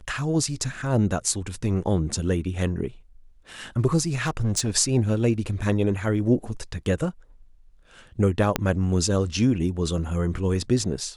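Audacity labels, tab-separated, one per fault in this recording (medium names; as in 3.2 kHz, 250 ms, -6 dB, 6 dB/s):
4.210000	4.680000	clipped -19 dBFS
8.560000	8.560000	pop -6 dBFS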